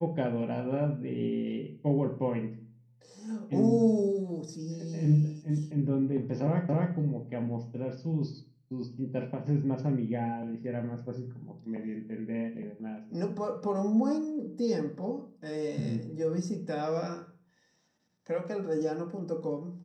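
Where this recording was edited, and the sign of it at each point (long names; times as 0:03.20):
0:06.69: the same again, the last 0.26 s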